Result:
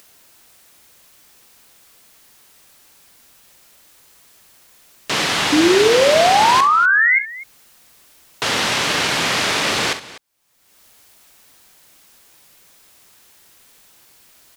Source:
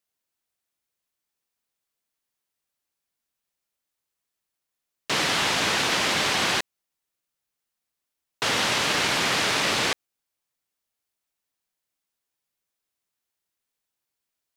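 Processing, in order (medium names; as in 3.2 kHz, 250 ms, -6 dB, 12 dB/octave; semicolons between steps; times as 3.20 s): upward compressor, threshold -32 dBFS; painted sound rise, 5.52–7.19 s, 290–2200 Hz -18 dBFS; multi-tap echo 42/66/248 ms -12/-14/-18 dB; trim +4 dB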